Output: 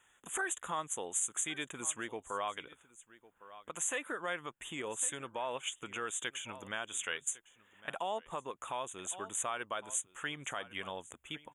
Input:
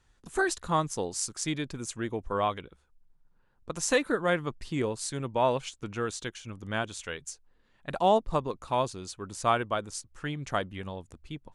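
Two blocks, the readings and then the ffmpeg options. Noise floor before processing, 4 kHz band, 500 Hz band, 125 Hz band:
−67 dBFS, −4.0 dB, −12.5 dB, −18.5 dB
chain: -filter_complex "[0:a]asplit=2[link_01][link_02];[link_02]acompressor=threshold=-37dB:ratio=6,volume=3dB[link_03];[link_01][link_03]amix=inputs=2:normalize=0,asuperstop=centerf=4800:order=12:qfactor=1.7,aecho=1:1:1105:0.0794,alimiter=limit=-21.5dB:level=0:latency=1:release=157,highpass=frequency=1300:poles=1"

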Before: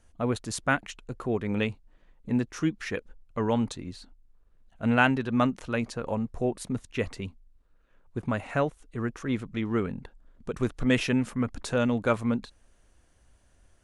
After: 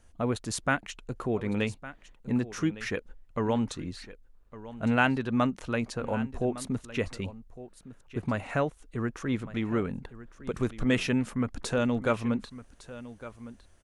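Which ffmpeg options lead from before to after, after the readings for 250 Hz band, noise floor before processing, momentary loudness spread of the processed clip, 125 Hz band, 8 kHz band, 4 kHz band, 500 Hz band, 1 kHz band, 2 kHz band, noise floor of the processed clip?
−1.0 dB, −63 dBFS, 18 LU, −1.0 dB, +0.5 dB, −1.0 dB, −1.0 dB, −1.5 dB, −1.5 dB, −58 dBFS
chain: -filter_complex "[0:a]asplit=2[link_01][link_02];[link_02]acompressor=threshold=-32dB:ratio=6,volume=-2dB[link_03];[link_01][link_03]amix=inputs=2:normalize=0,aecho=1:1:1158:0.158,volume=-3.5dB"

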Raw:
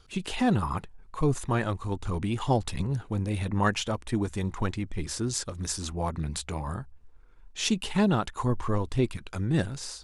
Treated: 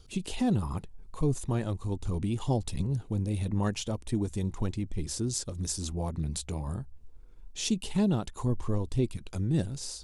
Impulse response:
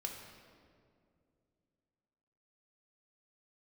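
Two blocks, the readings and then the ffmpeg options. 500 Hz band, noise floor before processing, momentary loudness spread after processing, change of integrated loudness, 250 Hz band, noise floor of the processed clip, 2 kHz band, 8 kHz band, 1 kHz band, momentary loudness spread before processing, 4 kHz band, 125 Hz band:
−4.0 dB, −52 dBFS, 7 LU, −2.5 dB, −2.0 dB, −50 dBFS, −11.0 dB, −1.0 dB, −9.0 dB, 9 LU, −4.5 dB, −1.0 dB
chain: -filter_complex "[0:a]asplit=2[link_01][link_02];[link_02]acompressor=threshold=-39dB:ratio=6,volume=1.5dB[link_03];[link_01][link_03]amix=inputs=2:normalize=0,equalizer=frequency=1500:width=0.64:gain=-12.5,volume=-2.5dB"

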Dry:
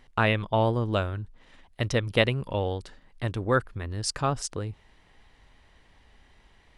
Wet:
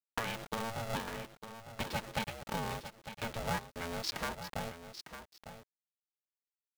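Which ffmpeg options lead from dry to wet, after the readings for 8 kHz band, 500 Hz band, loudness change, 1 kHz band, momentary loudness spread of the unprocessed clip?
−8.5 dB, −14.0 dB, −11.5 dB, −8.0 dB, 12 LU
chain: -af "adynamicequalizer=threshold=0.00891:dfrequency=120:dqfactor=4.4:tfrequency=120:tqfactor=4.4:attack=5:release=100:ratio=0.375:range=2:mode=cutabove:tftype=bell,aresample=11025,aresample=44100,lowshelf=frequency=68:gain=-11,acompressor=threshold=-34dB:ratio=10,aeval=exprs='val(0)*gte(abs(val(0)),0.00596)':channel_layout=same,aecho=1:1:3.8:0.75,aecho=1:1:903:0.282,aeval=exprs='val(0)*sgn(sin(2*PI*340*n/s))':channel_layout=same,volume=-1dB"

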